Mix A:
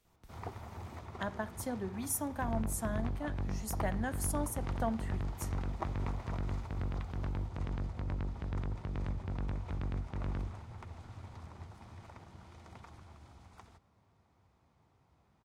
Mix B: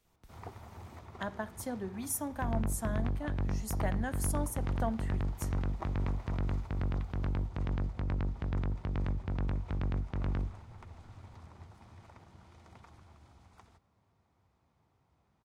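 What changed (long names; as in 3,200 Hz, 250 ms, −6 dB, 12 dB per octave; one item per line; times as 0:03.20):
first sound −3.0 dB
second sound +4.0 dB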